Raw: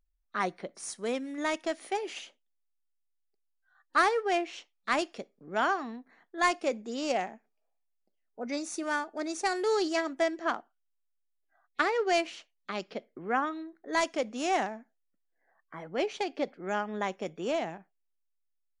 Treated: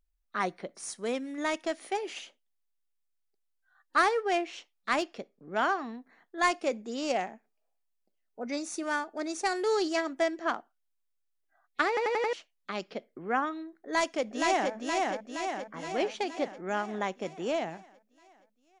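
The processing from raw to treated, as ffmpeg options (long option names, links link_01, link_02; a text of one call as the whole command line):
ffmpeg -i in.wav -filter_complex "[0:a]asettb=1/sr,asplit=3[link_01][link_02][link_03];[link_01]atrim=end=4.994[link_04];[link_02]atrim=start=4.99:end=5.84,asetpts=PTS-STARTPTS,afade=type=in:duration=0.004:curve=qsin,afade=type=out:start_time=0.846:duration=0.004:curve=qsin,adynamicsmooth=sensitivity=5.5:basefreq=7300[link_05];[link_03]atrim=start=5.836[link_06];[link_04][link_05]acrossfade=duration=0.004:curve1=hsin:curve2=qsin[link_07];[link_07][link_06]acrossfade=duration=0.004:curve1=qsin:curve2=hsin,asplit=2[link_08][link_09];[link_09]afade=type=in:start_time=13.81:duration=0.01,afade=type=out:start_time=14.73:duration=0.01,aecho=0:1:470|940|1410|1880|2350|2820|3290|3760|4230:0.794328|0.476597|0.285958|0.171575|0.102945|0.061767|0.0370602|0.0222361|0.0133417[link_10];[link_08][link_10]amix=inputs=2:normalize=0,asplit=6[link_11][link_12][link_13][link_14][link_15][link_16];[link_11]atrim=end=11.972[link_17];[link_12]atrim=start=11.878:end=11.972[link_18];[link_13]atrim=start=11.878:end=11.972[link_19];[link_14]atrim=start=11.878:end=11.972[link_20];[link_15]atrim=start=11.878:end=11.972[link_21];[link_16]atrim=start=12.328[link_22];[link_17][link_18]acrossfade=duration=0.004:curve1=hsin:curve2=hsin[link_23];[link_23][link_19]acrossfade=duration=0.004:curve1=hsin:curve2=hsin[link_24];[link_24][link_20]acrossfade=duration=0.004:curve1=hsin:curve2=hsin[link_25];[link_25][link_21]acrossfade=duration=0.004:curve1=hsin:curve2=hsin[link_26];[link_26][link_22]acrossfade=duration=0.004:curve1=hsin:curve2=hsin" out.wav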